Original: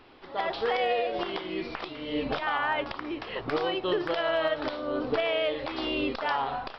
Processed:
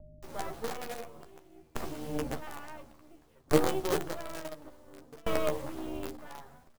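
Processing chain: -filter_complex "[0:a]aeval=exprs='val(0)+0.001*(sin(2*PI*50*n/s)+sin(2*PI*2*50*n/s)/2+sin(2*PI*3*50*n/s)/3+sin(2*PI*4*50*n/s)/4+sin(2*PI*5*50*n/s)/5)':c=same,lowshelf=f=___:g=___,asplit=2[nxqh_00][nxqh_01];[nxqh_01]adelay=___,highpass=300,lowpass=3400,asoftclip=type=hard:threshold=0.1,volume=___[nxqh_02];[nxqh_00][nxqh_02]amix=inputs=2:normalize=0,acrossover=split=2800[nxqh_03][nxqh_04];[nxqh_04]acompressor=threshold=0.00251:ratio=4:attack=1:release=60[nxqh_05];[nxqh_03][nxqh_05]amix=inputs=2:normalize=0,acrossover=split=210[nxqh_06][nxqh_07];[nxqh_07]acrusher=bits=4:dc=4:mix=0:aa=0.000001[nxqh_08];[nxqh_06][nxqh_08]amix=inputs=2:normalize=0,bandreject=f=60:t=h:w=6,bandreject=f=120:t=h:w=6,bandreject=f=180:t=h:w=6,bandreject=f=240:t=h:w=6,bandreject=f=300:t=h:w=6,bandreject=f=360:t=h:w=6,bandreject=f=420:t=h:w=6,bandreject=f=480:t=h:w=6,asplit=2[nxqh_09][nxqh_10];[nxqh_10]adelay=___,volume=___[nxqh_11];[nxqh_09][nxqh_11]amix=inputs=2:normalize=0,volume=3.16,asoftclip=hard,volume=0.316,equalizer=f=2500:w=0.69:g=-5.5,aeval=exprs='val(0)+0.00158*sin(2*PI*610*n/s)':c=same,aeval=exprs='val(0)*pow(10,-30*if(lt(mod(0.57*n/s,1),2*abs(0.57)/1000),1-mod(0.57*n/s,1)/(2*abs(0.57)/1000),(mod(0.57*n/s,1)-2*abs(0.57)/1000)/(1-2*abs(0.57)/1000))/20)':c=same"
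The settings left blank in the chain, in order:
500, 9.5, 180, 0.0398, 13, 0.562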